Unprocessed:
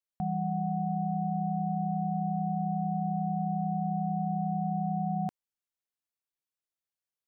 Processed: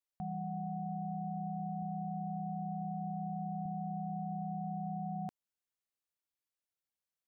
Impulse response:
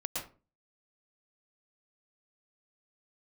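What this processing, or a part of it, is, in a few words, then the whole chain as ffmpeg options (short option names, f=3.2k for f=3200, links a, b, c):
stacked limiters: -filter_complex "[0:a]asettb=1/sr,asplit=3[a][b][c];[a]atrim=end=1.824[d];[b]atrim=start=1.82:end=3.66,asetpts=PTS-STARTPTS,afade=t=in:d=0.004:c=qsin,afade=t=out:st=1.836:d=0.004:c=qsin,highpass=f=50:w=0.5412,highpass=f=50:w=1.3066[e];[c]atrim=start=3.656[f];[d][e]acrossfade=d=0.004:c1=hsin:c2=qsin[g];[g][f]acrossfade=d=0.004:c1=qsin:c2=hsin,alimiter=level_in=2dB:limit=-24dB:level=0:latency=1:release=34,volume=-2dB,alimiter=level_in=5.5dB:limit=-24dB:level=0:latency=1:release=180,volume=-5.5dB,volume=-2.5dB"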